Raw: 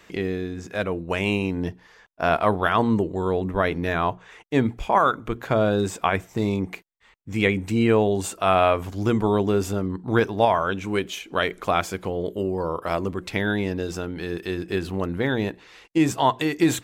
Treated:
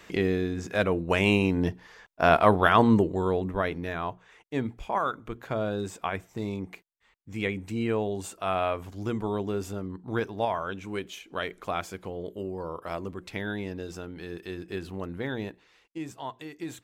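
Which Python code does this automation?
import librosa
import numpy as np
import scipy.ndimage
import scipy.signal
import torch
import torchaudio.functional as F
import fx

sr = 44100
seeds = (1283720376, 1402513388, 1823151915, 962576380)

y = fx.gain(x, sr, db=fx.line((2.93, 1.0), (3.96, -9.0), (15.41, -9.0), (16.05, -17.5)))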